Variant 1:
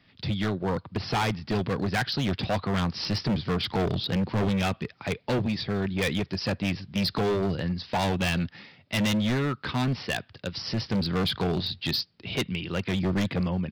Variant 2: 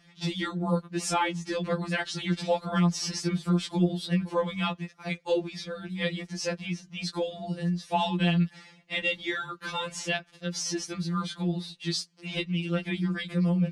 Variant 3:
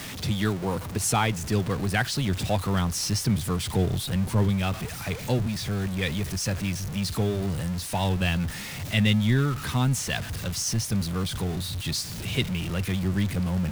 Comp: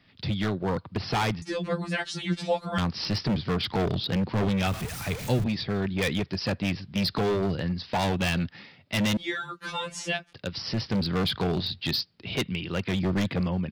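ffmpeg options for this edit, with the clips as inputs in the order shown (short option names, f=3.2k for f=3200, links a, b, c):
-filter_complex "[1:a]asplit=2[a][b];[0:a]asplit=4[c][d][e][f];[c]atrim=end=1.422[g];[a]atrim=start=1.418:end=2.782[h];[d]atrim=start=2.778:end=4.672[i];[2:a]atrim=start=4.668:end=5.442[j];[e]atrim=start=5.438:end=9.172[k];[b]atrim=start=9.168:end=10.332[l];[f]atrim=start=10.328[m];[g][h]acrossfade=d=0.004:c1=hsin:c2=hsin[n];[n][i]acrossfade=d=0.004:c1=hsin:c2=hsin[o];[o][j]acrossfade=d=0.004:c1=hsin:c2=hsin[p];[p][k]acrossfade=d=0.004:c1=hsin:c2=hsin[q];[q][l]acrossfade=d=0.004:c1=hsin:c2=hsin[r];[r][m]acrossfade=d=0.004:c1=hsin:c2=hsin"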